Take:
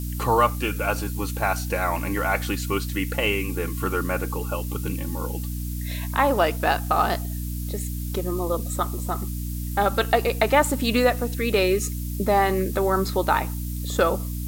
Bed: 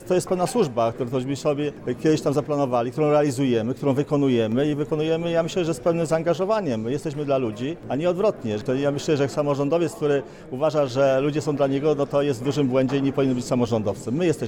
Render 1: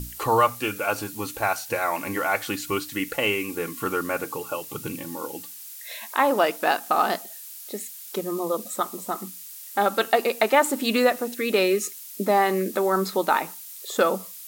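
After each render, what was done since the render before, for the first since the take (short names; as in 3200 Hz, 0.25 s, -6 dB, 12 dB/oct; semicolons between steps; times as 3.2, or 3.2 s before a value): notches 60/120/180/240/300 Hz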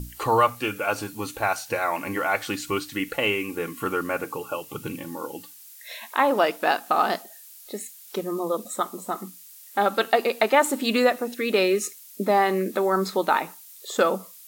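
noise print and reduce 6 dB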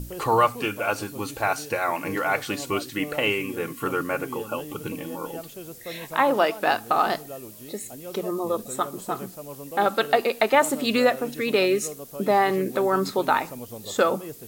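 add bed -17 dB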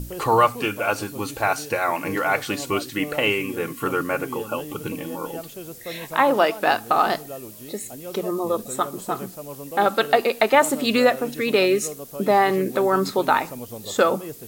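gain +2.5 dB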